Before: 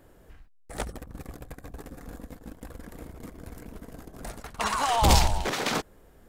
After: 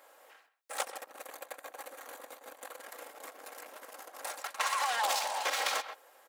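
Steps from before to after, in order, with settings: minimum comb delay 3.7 ms; HPF 560 Hz 24 dB/oct; speakerphone echo 0.13 s, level -15 dB; compressor 6:1, threshold -33 dBFS, peak gain reduction 12.5 dB; 1.1–2.86 notch 5200 Hz, Q 8.7; gain +4.5 dB

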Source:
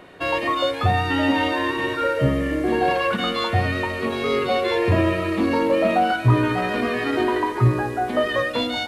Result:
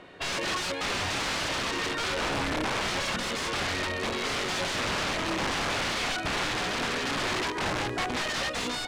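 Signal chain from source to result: high shelf 3400 Hz +9.5 dB; wrapped overs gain 18 dB; air absorption 89 m; gain -4.5 dB

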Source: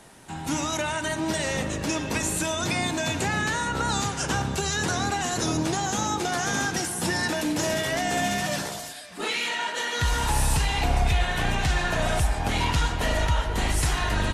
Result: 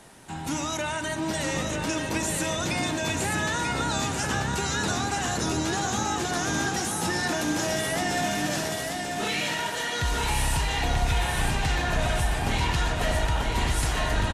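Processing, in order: in parallel at -1.5 dB: limiter -22.5 dBFS, peak gain reduction 10 dB; on the sum: feedback echo 0.938 s, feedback 40%, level -4.5 dB; gain -5.5 dB

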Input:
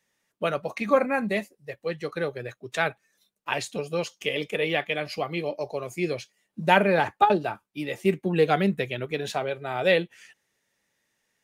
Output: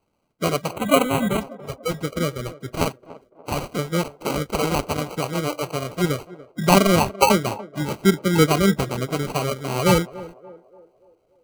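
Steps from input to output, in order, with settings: bin magnitudes rounded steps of 30 dB; low shelf 180 Hz +9.5 dB; sample-and-hold 25×; 0.73–1.41 Butterworth band-stop 5200 Hz, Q 1.8; narrowing echo 0.289 s, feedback 50%, band-pass 530 Hz, level -16 dB; gain +3.5 dB

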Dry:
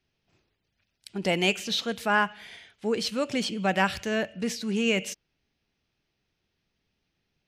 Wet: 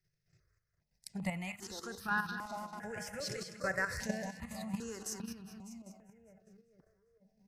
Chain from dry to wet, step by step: 1.76–4.07 regenerating reverse delay 0.277 s, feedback 42%, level -7.5 dB; notch 2300 Hz, Q 17; de-hum 67.27 Hz, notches 17; chopper 1.1 Hz, depth 65%, duty 70%; compressor 4:1, threshold -26 dBFS, peak gain reduction 7.5 dB; EQ curve 150 Hz 0 dB, 270 Hz -15 dB, 2000 Hz -4 dB, 3100 Hz -23 dB, 5100 Hz -5 dB; split-band echo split 1100 Hz, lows 0.451 s, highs 0.199 s, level -7 dB; dynamic EQ 1200 Hz, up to -5 dB, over -57 dBFS, Q 7.9; level quantiser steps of 9 dB; step phaser 2.5 Hz 250–2100 Hz; gain +7.5 dB

